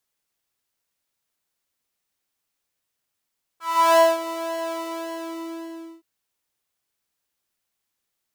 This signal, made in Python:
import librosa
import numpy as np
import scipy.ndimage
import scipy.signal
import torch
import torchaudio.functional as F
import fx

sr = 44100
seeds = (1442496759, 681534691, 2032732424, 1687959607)

y = fx.sub_patch_pwm(sr, seeds[0], note=64, wave2='triangle', interval_st=19, detune_cents=16, level2_db=-3.5, sub_db=-28.0, noise_db=-16, kind='highpass', cutoff_hz=310.0, q=3.6, env_oct=2.0, env_decay_s=0.57, env_sustain_pct=40, attack_ms=354.0, decay_s=0.22, sustain_db=-13.5, release_s=1.3, note_s=1.12, lfo_hz=1.8, width_pct=34, width_swing_pct=7)